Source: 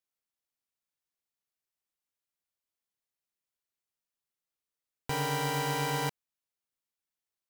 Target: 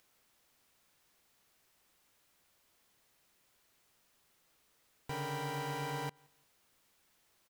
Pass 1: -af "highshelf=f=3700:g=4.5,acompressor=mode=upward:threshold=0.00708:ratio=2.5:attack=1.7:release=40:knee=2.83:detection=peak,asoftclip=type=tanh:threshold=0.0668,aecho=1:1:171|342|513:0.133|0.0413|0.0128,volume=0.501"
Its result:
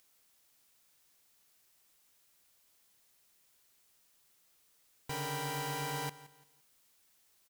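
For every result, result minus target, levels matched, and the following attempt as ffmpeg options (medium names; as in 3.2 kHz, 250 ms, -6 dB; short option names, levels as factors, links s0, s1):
echo-to-direct +11.5 dB; 8 kHz band +5.5 dB
-af "highshelf=f=3700:g=4.5,acompressor=mode=upward:threshold=0.00708:ratio=2.5:attack=1.7:release=40:knee=2.83:detection=peak,asoftclip=type=tanh:threshold=0.0668,aecho=1:1:171|342:0.0355|0.011,volume=0.501"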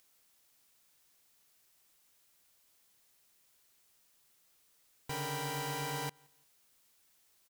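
8 kHz band +6.0 dB
-af "highshelf=f=3700:g=-5.5,acompressor=mode=upward:threshold=0.00708:ratio=2.5:attack=1.7:release=40:knee=2.83:detection=peak,asoftclip=type=tanh:threshold=0.0668,aecho=1:1:171|342:0.0355|0.011,volume=0.501"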